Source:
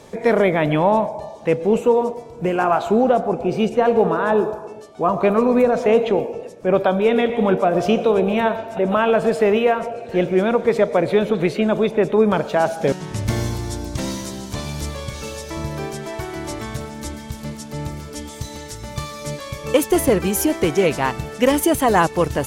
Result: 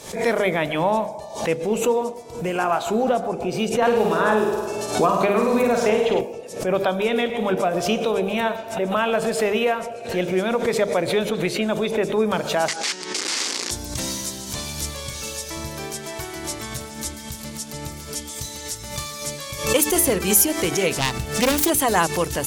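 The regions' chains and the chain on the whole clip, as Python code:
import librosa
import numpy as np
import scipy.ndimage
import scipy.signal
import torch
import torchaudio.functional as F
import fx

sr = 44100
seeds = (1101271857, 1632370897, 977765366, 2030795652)

y = fx.chain(x, sr, fx.room_flutter(wall_m=8.7, rt60_s=0.72),
    fx.band_squash(depth_pct=100), at=(3.82, 6.21))
y = fx.chain(y, sr, fx.overflow_wrap(gain_db=21.0),
    fx.cabinet(low_hz=240.0, low_slope=24, high_hz=7700.0, hz=(370.0, 660.0, 2100.0, 4700.0), db=(3, -8, 4, 4)), at=(12.68, 13.71))
y = fx.chain(y, sr, fx.self_delay(depth_ms=0.3),
    fx.low_shelf(hz=160.0, db=8.0), at=(20.98, 21.7))
y = fx.peak_eq(y, sr, hz=13000.0, db=13.0, octaves=2.7)
y = fx.hum_notches(y, sr, base_hz=50, count=9)
y = fx.pre_swell(y, sr, db_per_s=96.0)
y = y * librosa.db_to_amplitude(-5.0)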